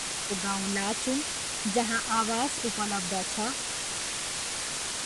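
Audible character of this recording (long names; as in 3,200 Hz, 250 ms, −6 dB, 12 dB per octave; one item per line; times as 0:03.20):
phaser sweep stages 8, 1.3 Hz, lowest notch 520–1,800 Hz
a quantiser's noise floor 6 bits, dither triangular
Ogg Vorbis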